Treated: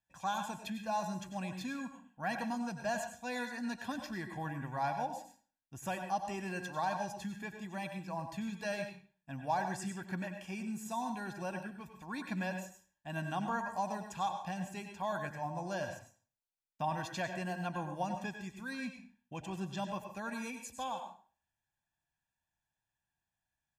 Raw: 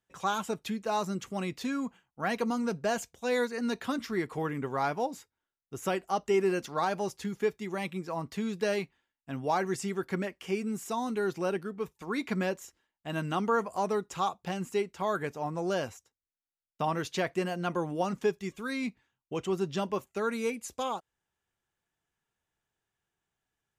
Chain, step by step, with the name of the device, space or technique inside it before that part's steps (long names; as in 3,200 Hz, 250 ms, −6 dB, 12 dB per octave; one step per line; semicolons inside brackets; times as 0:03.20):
microphone above a desk (comb filter 1.2 ms, depth 85%; convolution reverb RT60 0.40 s, pre-delay 88 ms, DRR 6 dB)
level −8.5 dB